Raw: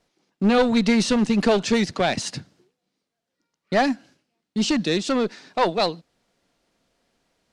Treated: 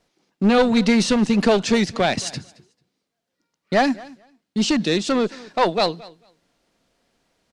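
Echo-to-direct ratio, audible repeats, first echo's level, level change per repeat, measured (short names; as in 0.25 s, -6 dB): -21.5 dB, 1, -21.5 dB, no steady repeat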